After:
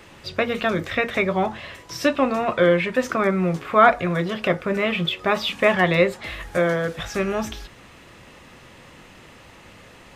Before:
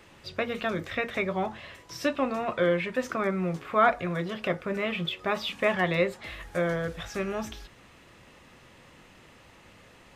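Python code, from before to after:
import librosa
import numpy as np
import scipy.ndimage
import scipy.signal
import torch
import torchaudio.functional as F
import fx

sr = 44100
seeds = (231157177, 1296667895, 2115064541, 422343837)

y = fx.highpass(x, sr, hz=160.0, slope=12, at=(6.57, 6.99))
y = F.gain(torch.from_numpy(y), 7.5).numpy()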